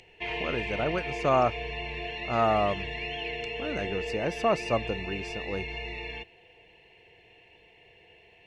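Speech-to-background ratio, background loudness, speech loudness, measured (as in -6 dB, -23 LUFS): 4.5 dB, -34.5 LUFS, -30.0 LUFS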